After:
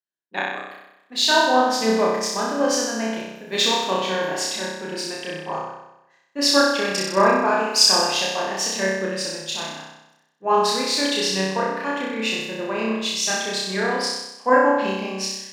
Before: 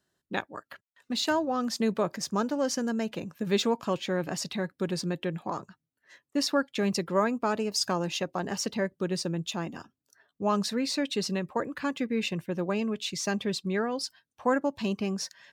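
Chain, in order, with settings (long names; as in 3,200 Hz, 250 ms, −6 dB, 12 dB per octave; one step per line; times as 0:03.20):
high-pass filter 870 Hz 6 dB per octave
high-shelf EQ 5,700 Hz −5.5 dB
notch filter 1,300 Hz, Q 7.5
flutter between parallel walls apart 5.4 metres, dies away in 1.4 s
multiband upward and downward expander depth 70%
level +8 dB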